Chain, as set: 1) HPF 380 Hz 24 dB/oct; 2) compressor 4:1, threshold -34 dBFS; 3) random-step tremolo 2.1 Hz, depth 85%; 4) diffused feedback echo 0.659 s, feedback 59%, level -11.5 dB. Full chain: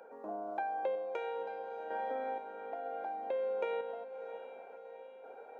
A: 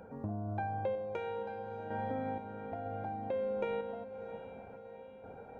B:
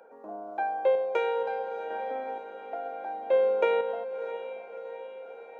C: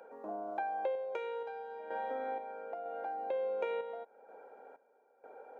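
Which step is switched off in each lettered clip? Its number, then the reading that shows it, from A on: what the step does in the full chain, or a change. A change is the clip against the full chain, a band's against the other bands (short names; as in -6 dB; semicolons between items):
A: 1, 250 Hz band +11.5 dB; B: 2, momentary loudness spread change +1 LU; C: 4, echo-to-direct -9.5 dB to none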